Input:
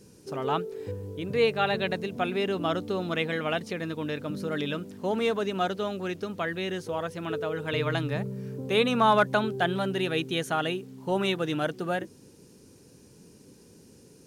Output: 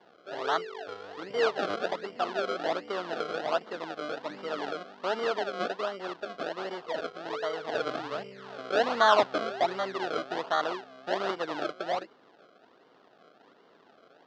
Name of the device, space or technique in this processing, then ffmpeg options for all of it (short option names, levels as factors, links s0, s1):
circuit-bent sampling toy: -af "acrusher=samples=33:mix=1:aa=0.000001:lfo=1:lforange=33:lforate=1.3,highpass=450,equalizer=f=670:t=q:w=4:g=5,equalizer=f=1300:t=q:w=4:g=4,equalizer=f=2300:t=q:w=4:g=-7,lowpass=f=4500:w=0.5412,lowpass=f=4500:w=1.3066,volume=0.891"